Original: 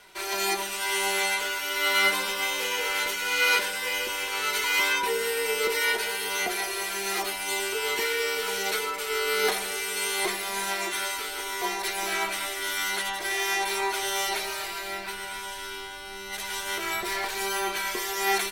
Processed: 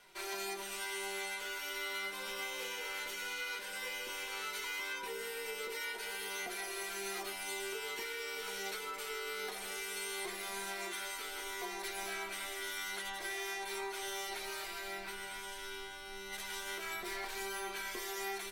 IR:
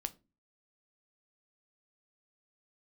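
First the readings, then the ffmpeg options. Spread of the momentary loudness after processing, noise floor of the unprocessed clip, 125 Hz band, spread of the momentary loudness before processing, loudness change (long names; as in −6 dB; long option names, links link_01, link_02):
3 LU, −37 dBFS, can't be measured, 8 LU, −13.0 dB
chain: -filter_complex "[0:a]acompressor=threshold=-29dB:ratio=6[link_01];[1:a]atrim=start_sample=2205,asetrate=83790,aresample=44100[link_02];[link_01][link_02]afir=irnorm=-1:irlink=0,volume=-2dB"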